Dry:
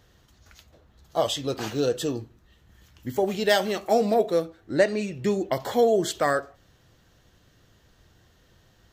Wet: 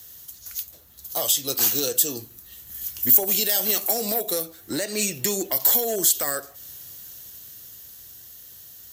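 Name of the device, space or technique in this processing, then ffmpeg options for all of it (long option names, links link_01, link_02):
FM broadcast chain: -filter_complex "[0:a]highpass=49,dynaudnorm=framelen=250:gausssize=17:maxgain=11.5dB,acrossover=split=180|540[link_01][link_02][link_03];[link_01]acompressor=threshold=-40dB:ratio=4[link_04];[link_02]acompressor=threshold=-19dB:ratio=4[link_05];[link_03]acompressor=threshold=-19dB:ratio=4[link_06];[link_04][link_05][link_06]amix=inputs=3:normalize=0,aemphasis=mode=production:type=75fm,alimiter=limit=-18.5dB:level=0:latency=1:release=346,asoftclip=type=hard:threshold=-21.5dB,lowpass=frequency=15000:width=0.5412,lowpass=frequency=15000:width=1.3066,aemphasis=mode=production:type=75fm"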